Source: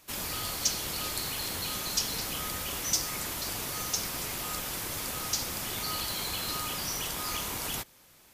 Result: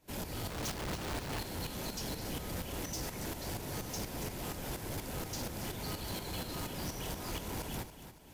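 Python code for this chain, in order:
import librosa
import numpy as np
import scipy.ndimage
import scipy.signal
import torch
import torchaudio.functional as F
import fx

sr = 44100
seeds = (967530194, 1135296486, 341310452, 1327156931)

y = fx.tilt_shelf(x, sr, db=7.0, hz=1100.0)
y = fx.notch(y, sr, hz=1200.0, q=5.1)
y = fx.schmitt(y, sr, flips_db=-40.0, at=(0.49, 1.39))
y = fx.tremolo_shape(y, sr, shape='saw_up', hz=4.2, depth_pct=80)
y = 10.0 ** (-37.0 / 20.0) * np.tanh(y / 10.0 ** (-37.0 / 20.0))
y = fx.echo_feedback(y, sr, ms=281, feedback_pct=38, wet_db=-12.0)
y = y * 10.0 ** (2.5 / 20.0)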